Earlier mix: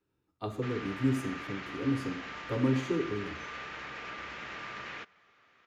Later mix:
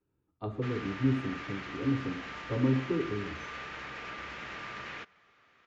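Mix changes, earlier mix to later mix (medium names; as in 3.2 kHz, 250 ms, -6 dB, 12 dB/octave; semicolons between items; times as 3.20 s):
speech: add tape spacing loss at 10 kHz 27 dB; master: add bass shelf 150 Hz +4 dB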